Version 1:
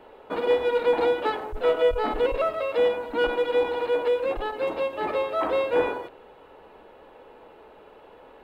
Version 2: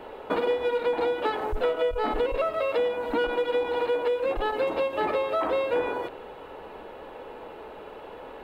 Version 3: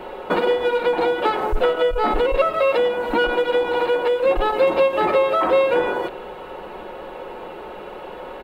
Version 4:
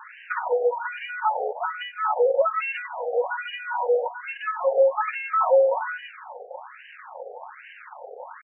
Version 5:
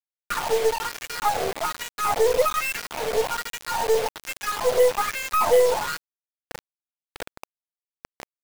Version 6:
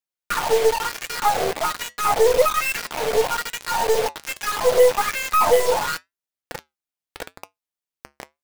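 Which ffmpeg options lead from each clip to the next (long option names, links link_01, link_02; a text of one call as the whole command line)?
ffmpeg -i in.wav -af "acompressor=threshold=-31dB:ratio=6,volume=7.5dB" out.wav
ffmpeg -i in.wav -af "aecho=1:1:5.5:0.45,volume=7dB" out.wav
ffmpeg -i in.wav -af "aecho=1:1:545:0.0841,aeval=exprs='val(0)*gte(abs(val(0)),0.0211)':channel_layout=same,afftfilt=real='re*between(b*sr/1024,570*pow(2200/570,0.5+0.5*sin(2*PI*1.2*pts/sr))/1.41,570*pow(2200/570,0.5+0.5*sin(2*PI*1.2*pts/sr))*1.41)':imag='im*between(b*sr/1024,570*pow(2200/570,0.5+0.5*sin(2*PI*1.2*pts/sr))/1.41,570*pow(2200/570,0.5+0.5*sin(2*PI*1.2*pts/sr))*1.41)':win_size=1024:overlap=0.75" out.wav
ffmpeg -i in.wav -af "afreqshift=-41,acrusher=bits=4:mix=0:aa=0.000001,aeval=exprs='0.335*(cos(1*acos(clip(val(0)/0.335,-1,1)))-cos(1*PI/2))+0.0299*(cos(6*acos(clip(val(0)/0.335,-1,1)))-cos(6*PI/2))':channel_layout=same" out.wav
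ffmpeg -i in.wav -af "flanger=delay=5.2:depth=1.8:regen=-79:speed=0.8:shape=sinusoidal,volume=8dB" out.wav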